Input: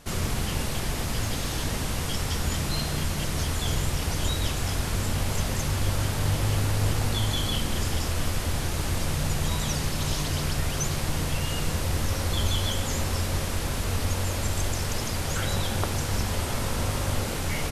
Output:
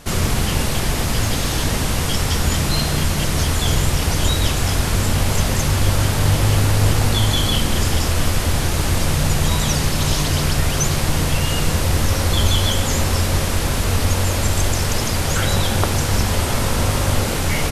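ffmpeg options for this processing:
-af "volume=9dB"

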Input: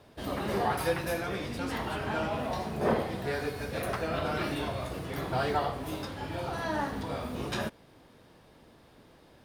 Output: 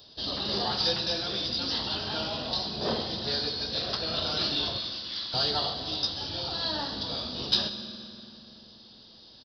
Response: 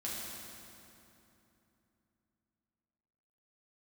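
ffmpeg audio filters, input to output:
-filter_complex "[0:a]asettb=1/sr,asplit=3[a][b][c];[a]atrim=end=4.784[d];[b]atrim=start=4.78:end=5.34,asetpts=PTS-STARTPTS,afade=t=in:d=0.004:c=qsin,afade=t=out:st=0.556:d=0.004:c=qsin,asuperpass=centerf=3600:order=4:qfactor=0.54[e];[c]atrim=start=5.336[f];[d][e]acrossfade=d=0.004:c1=hsin:c2=qsin[g];[g][f]acrossfade=d=0.004:c1=qsin:c2=hsin,asplit=2[h][i];[1:a]atrim=start_sample=2205,adelay=127[j];[i][j]afir=irnorm=-1:irlink=0,volume=-12dB[k];[h][k]amix=inputs=2:normalize=0,aresample=11025,aresample=44100,aexciter=amount=14.5:drive=7.7:freq=3.5k,volume=-4dB"

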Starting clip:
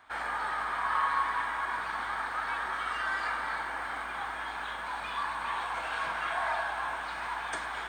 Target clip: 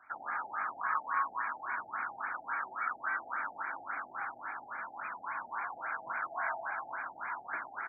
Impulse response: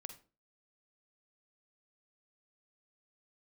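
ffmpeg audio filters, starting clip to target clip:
-filter_complex "[0:a]highpass=f=110:w=0.5412,highpass=f=110:w=1.3066,equalizer=f=170:t=q:w=4:g=-7,equalizer=f=450:t=q:w=4:g=-8,equalizer=f=1.4k:t=q:w=4:g=9,equalizer=f=2.3k:t=q:w=4:g=5,lowpass=f=6.6k:w=0.5412,lowpass=f=6.6k:w=1.3066,asplit=2[a][b];[b]adelay=21,volume=-13dB[c];[a][c]amix=inputs=2:normalize=0,afftfilt=real='re*lt(b*sr/1024,840*pow(2500/840,0.5+0.5*sin(2*PI*3.6*pts/sr)))':imag='im*lt(b*sr/1024,840*pow(2500/840,0.5+0.5*sin(2*PI*3.6*pts/sr)))':win_size=1024:overlap=0.75,volume=-6dB"

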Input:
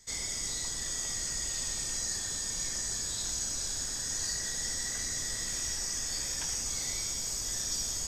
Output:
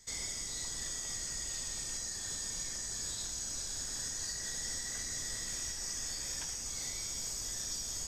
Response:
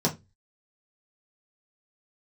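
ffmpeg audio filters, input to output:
-af "alimiter=level_in=3.5dB:limit=-24dB:level=0:latency=1:release=440,volume=-3.5dB,volume=-1dB"

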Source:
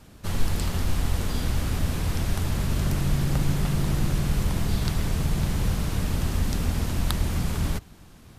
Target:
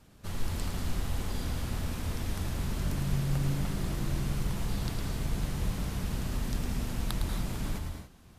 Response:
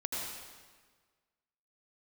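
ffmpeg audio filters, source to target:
-filter_complex "[0:a]asplit=2[a][b];[1:a]atrim=start_sample=2205,afade=t=out:st=0.24:d=0.01,atrim=end_sample=11025,adelay=108[c];[b][c]afir=irnorm=-1:irlink=0,volume=-5.5dB[d];[a][d]amix=inputs=2:normalize=0,volume=-8.5dB"

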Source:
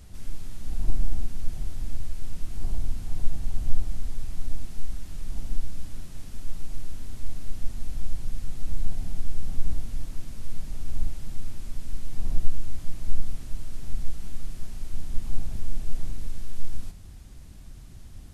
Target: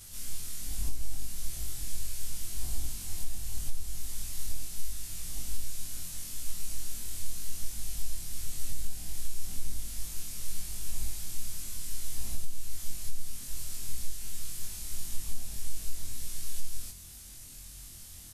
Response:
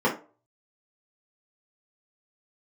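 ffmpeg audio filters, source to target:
-af "afftfilt=real='re':imag='-im':win_size=2048:overlap=0.75,alimiter=limit=-14.5dB:level=0:latency=1:release=463,crystalizer=i=10:c=0,aresample=32000,aresample=44100,volume=-3.5dB"

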